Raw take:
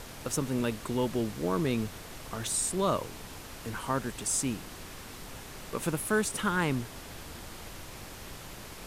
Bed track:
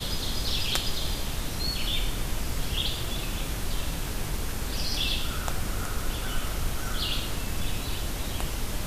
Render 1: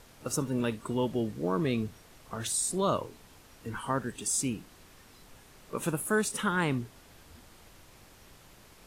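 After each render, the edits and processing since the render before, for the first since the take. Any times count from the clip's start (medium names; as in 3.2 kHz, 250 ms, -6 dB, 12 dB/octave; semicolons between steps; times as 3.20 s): noise print and reduce 11 dB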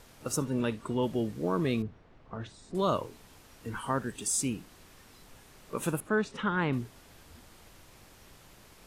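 0.44–1.02 s: treble shelf 12 kHz -> 7.7 kHz -10.5 dB; 1.82–2.75 s: tape spacing loss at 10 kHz 37 dB; 6.00–6.73 s: distance through air 200 m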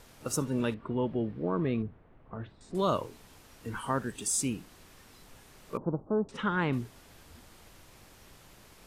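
0.74–2.61 s: distance through air 430 m; 5.77–6.29 s: steep low-pass 970 Hz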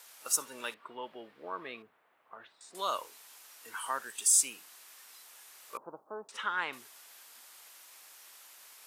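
high-pass 940 Hz 12 dB/octave; treble shelf 6.9 kHz +10.5 dB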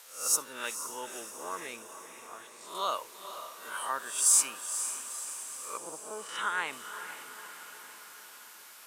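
reverse spectral sustain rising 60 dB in 0.46 s; on a send: echo that smears into a reverb 485 ms, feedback 61%, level -10 dB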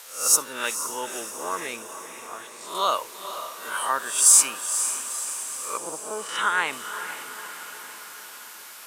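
trim +8.5 dB; peak limiter -3 dBFS, peak gain reduction 1 dB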